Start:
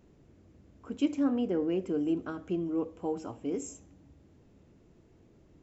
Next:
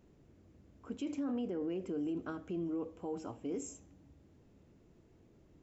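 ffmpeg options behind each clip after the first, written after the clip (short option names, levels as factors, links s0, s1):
-af "alimiter=level_in=1.41:limit=0.0631:level=0:latency=1:release=25,volume=0.708,volume=0.668"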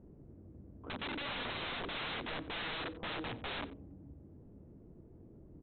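-af "adynamicsmooth=sensitivity=4:basefreq=720,aresample=8000,aeval=exprs='(mod(150*val(0)+1,2)-1)/150':c=same,aresample=44100,aecho=1:1:90:0.126,volume=2.66"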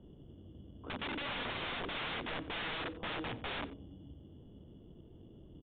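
-filter_complex "[0:a]acrossover=split=300[s0][s1];[s0]acrusher=samples=14:mix=1:aa=0.000001[s2];[s2][s1]amix=inputs=2:normalize=0,aresample=8000,aresample=44100,volume=1.12"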